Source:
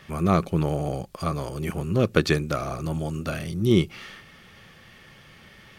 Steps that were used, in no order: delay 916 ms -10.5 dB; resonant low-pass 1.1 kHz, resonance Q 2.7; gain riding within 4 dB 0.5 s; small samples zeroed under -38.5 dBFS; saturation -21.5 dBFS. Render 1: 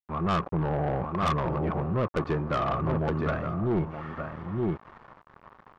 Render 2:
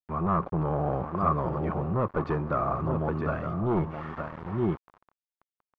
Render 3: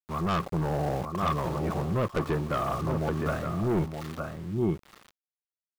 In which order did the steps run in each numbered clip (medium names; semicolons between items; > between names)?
delay > gain riding > small samples zeroed > resonant low-pass > saturation; delay > small samples zeroed > saturation > gain riding > resonant low-pass; resonant low-pass > small samples zeroed > delay > saturation > gain riding